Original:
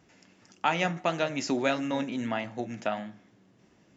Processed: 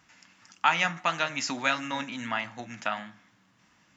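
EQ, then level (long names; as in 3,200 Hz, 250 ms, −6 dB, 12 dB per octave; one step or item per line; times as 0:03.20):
parametric band 390 Hz −11.5 dB 0.27 octaves
low shelf with overshoot 800 Hz −8.5 dB, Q 1.5
+4.0 dB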